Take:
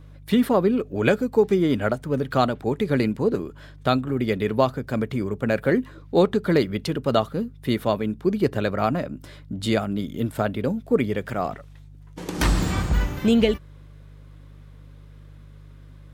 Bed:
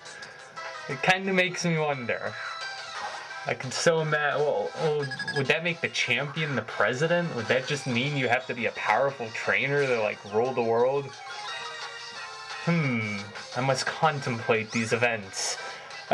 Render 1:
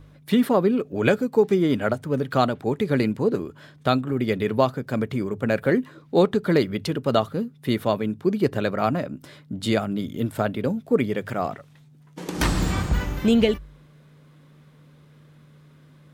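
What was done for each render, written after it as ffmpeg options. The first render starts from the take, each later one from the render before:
ffmpeg -i in.wav -af "bandreject=frequency=50:width_type=h:width=4,bandreject=frequency=100:width_type=h:width=4" out.wav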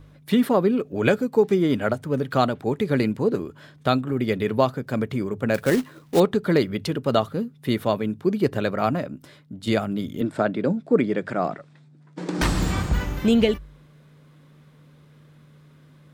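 ffmpeg -i in.wav -filter_complex "[0:a]asettb=1/sr,asplit=3[link_01][link_02][link_03];[link_01]atrim=end=5.544[link_04];[link_02]atrim=start=5.54:end=6.2,asetpts=PTS-STARTPTS,afade=type=in:duration=0.004:curve=qsin,afade=type=out:start_time=0.656:duration=0.004:curve=qsin,acrusher=bits=3:mode=log:mix=0:aa=0.000001[link_05];[link_03]atrim=start=6.196[link_06];[link_04][link_05]acrossfade=duration=0.004:curve1=hsin:curve2=qsin[link_07];[link_07][link_06]acrossfade=duration=0.004:curve1=qsin:curve2=hsin,asettb=1/sr,asplit=3[link_08][link_09][link_10];[link_08]atrim=end=10.214[link_11];[link_09]atrim=start=10.21:end=12.42,asetpts=PTS-STARTPTS,afade=type=in:duration=0.004:curve=qsin,afade=type=out:start_time=2.206:duration=0.004:curve=qsin,highpass=160,equalizer=frequency=170:width_type=q:width=4:gain=7,equalizer=frequency=320:width_type=q:width=4:gain=6,equalizer=frequency=610:width_type=q:width=4:gain=3,equalizer=frequency=1500:width_type=q:width=4:gain=3,equalizer=frequency=3000:width_type=q:width=4:gain=-5,equalizer=frequency=6300:width_type=q:width=4:gain=-6,lowpass=frequency=7900:width=0.5412,lowpass=frequency=7900:width=1.3066[link_12];[link_10]atrim=start=12.416[link_13];[link_11][link_12]acrossfade=duration=0.004:curve1=hsin:curve2=qsin[link_14];[link_14][link_13]acrossfade=duration=0.004:curve1=qsin:curve2=hsin,asplit=2[link_15][link_16];[link_15]atrim=end=9.67,asetpts=PTS-STARTPTS,afade=type=out:start_time=8.94:duration=0.73:silence=0.398107[link_17];[link_16]atrim=start=9.67,asetpts=PTS-STARTPTS,afade=type=in:duration=0.004:curve=hsin:silence=0.398107[link_18];[link_17][link_18]concat=n=2:v=0:a=1" out.wav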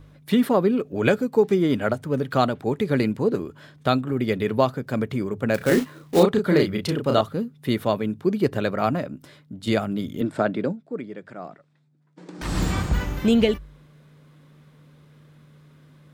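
ffmpeg -i in.wav -filter_complex "[0:a]asettb=1/sr,asplit=3[link_01][link_02][link_03];[link_01]atrim=end=5.574[link_04];[link_02]atrim=start=5.57:end=7.21,asetpts=PTS-STARTPTS,afade=type=in:duration=0.004:curve=qsin,afade=type=out:start_time=1.636:duration=0.004:curve=qsin,asplit=2[link_05][link_06];[link_06]adelay=33,volume=-4dB[link_07];[link_05][link_07]amix=inputs=2:normalize=0,atrim=end_sample=72324[link_08];[link_03]atrim=start=7.206[link_09];[link_04][link_08]acrossfade=duration=0.004:curve1=hsin:curve2=qsin[link_10];[link_10][link_09]acrossfade=duration=0.004:curve1=qsin:curve2=hsin,asplit=3[link_11][link_12][link_13];[link_11]atrim=end=10.77,asetpts=PTS-STARTPTS,afade=type=out:start_time=10.62:duration=0.15:silence=0.237137[link_14];[link_12]atrim=start=10.77:end=12.43,asetpts=PTS-STARTPTS,volume=-12.5dB[link_15];[link_13]atrim=start=12.43,asetpts=PTS-STARTPTS,afade=type=in:duration=0.15:silence=0.237137[link_16];[link_14][link_15][link_16]concat=n=3:v=0:a=1" out.wav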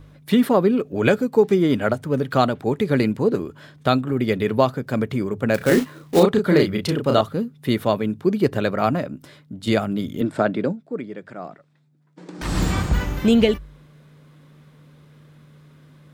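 ffmpeg -i in.wav -af "volume=2.5dB,alimiter=limit=-3dB:level=0:latency=1" out.wav

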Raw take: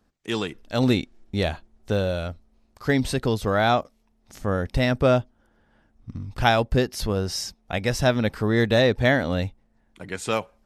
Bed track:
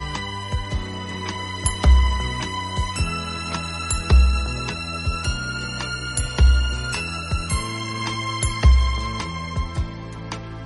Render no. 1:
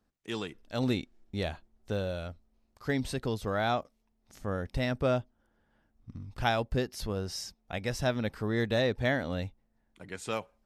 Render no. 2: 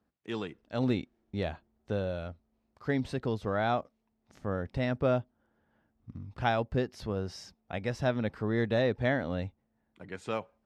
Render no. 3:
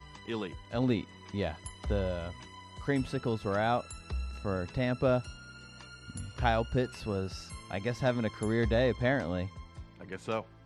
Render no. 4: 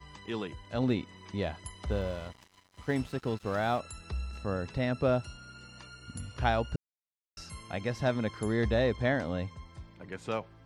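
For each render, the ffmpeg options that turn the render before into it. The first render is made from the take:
ffmpeg -i in.wav -af "volume=-9dB" out.wav
ffmpeg -i in.wav -af "highpass=73,aemphasis=mode=reproduction:type=75fm" out.wav
ffmpeg -i in.wav -i bed.wav -filter_complex "[1:a]volume=-22dB[link_01];[0:a][link_01]amix=inputs=2:normalize=0" out.wav
ffmpeg -i in.wav -filter_complex "[0:a]asettb=1/sr,asplit=3[link_01][link_02][link_03];[link_01]atrim=end=1.904[link_04];[link_02]atrim=start=1.9:end=3.8,asetpts=PTS-STARTPTS,afade=type=in:duration=0.004:curve=qsin,afade=type=out:start_time=1.896:duration=0.004:curve=qsin,aeval=exprs='sgn(val(0))*max(abs(val(0))-0.00501,0)':channel_layout=same[link_05];[link_03]atrim=start=3.796[link_06];[link_04][link_05]acrossfade=duration=0.004:curve1=hsin:curve2=qsin[link_07];[link_07][link_06]acrossfade=duration=0.004:curve1=qsin:curve2=hsin,asplit=3[link_08][link_09][link_10];[link_08]atrim=end=6.76,asetpts=PTS-STARTPTS,afade=type=out:start_time=6.756:duration=0.004:curve=hsin[link_11];[link_09]atrim=start=6.76:end=7.37,asetpts=PTS-STARTPTS,volume=0[link_12];[link_10]atrim=start=7.37,asetpts=PTS-STARTPTS,afade=type=in:duration=0.004:curve=hsin[link_13];[link_11][link_12][link_13]concat=n=3:v=0:a=1" out.wav

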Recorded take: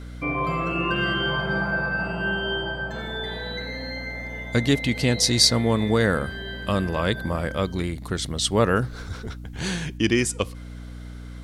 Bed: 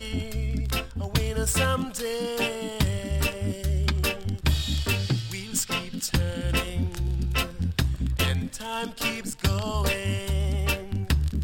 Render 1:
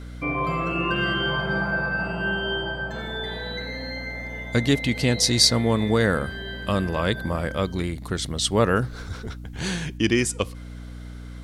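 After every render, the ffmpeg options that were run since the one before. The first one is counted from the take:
ffmpeg -i in.wav -af anull out.wav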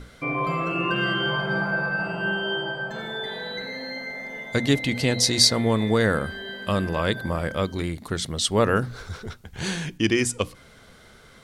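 ffmpeg -i in.wav -af "bandreject=frequency=60:width_type=h:width=6,bandreject=frequency=120:width_type=h:width=6,bandreject=frequency=180:width_type=h:width=6,bandreject=frequency=240:width_type=h:width=6,bandreject=frequency=300:width_type=h:width=6" out.wav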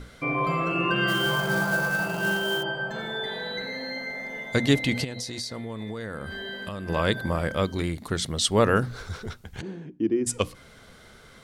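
ffmpeg -i in.wav -filter_complex "[0:a]asplit=3[link_01][link_02][link_03];[link_01]afade=type=out:start_time=1.07:duration=0.02[link_04];[link_02]acrusher=bits=3:mode=log:mix=0:aa=0.000001,afade=type=in:start_time=1.07:duration=0.02,afade=type=out:start_time=2.62:duration=0.02[link_05];[link_03]afade=type=in:start_time=2.62:duration=0.02[link_06];[link_04][link_05][link_06]amix=inputs=3:normalize=0,asplit=3[link_07][link_08][link_09];[link_07]afade=type=out:start_time=5.03:duration=0.02[link_10];[link_08]acompressor=threshold=-30dB:ratio=12:attack=3.2:release=140:knee=1:detection=peak,afade=type=in:start_time=5.03:duration=0.02,afade=type=out:start_time=6.88:duration=0.02[link_11];[link_09]afade=type=in:start_time=6.88:duration=0.02[link_12];[link_10][link_11][link_12]amix=inputs=3:normalize=0,asplit=3[link_13][link_14][link_15];[link_13]afade=type=out:start_time=9.6:duration=0.02[link_16];[link_14]bandpass=frequency=310:width_type=q:width=2,afade=type=in:start_time=9.6:duration=0.02,afade=type=out:start_time=10.26:duration=0.02[link_17];[link_15]afade=type=in:start_time=10.26:duration=0.02[link_18];[link_16][link_17][link_18]amix=inputs=3:normalize=0" out.wav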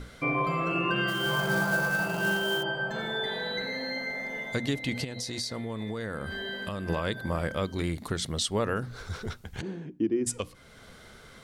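ffmpeg -i in.wav -af "alimiter=limit=-18dB:level=0:latency=1:release=451" out.wav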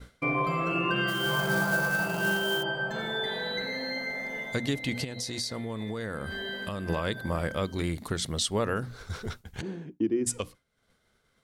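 ffmpeg -i in.wav -af "agate=range=-33dB:threshold=-37dB:ratio=3:detection=peak,highshelf=frequency=8900:gain=3.5" out.wav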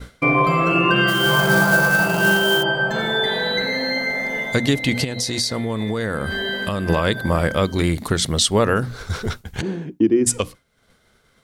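ffmpeg -i in.wav -af "volume=11dB" out.wav

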